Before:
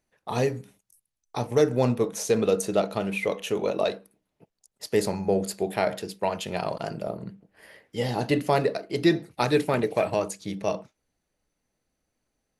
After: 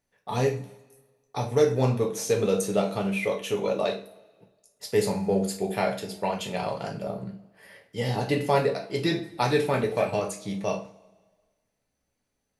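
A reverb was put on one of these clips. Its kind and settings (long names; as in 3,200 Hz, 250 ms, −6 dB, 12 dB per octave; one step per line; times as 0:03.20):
coupled-rooms reverb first 0.31 s, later 1.5 s, from −22 dB, DRR 0.5 dB
level −3 dB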